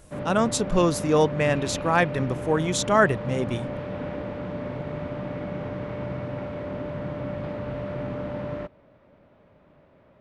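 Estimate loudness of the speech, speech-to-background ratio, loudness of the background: -23.5 LUFS, 9.0 dB, -32.5 LUFS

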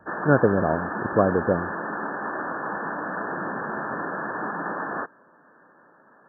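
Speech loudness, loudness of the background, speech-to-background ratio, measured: -23.0 LUFS, -30.0 LUFS, 7.0 dB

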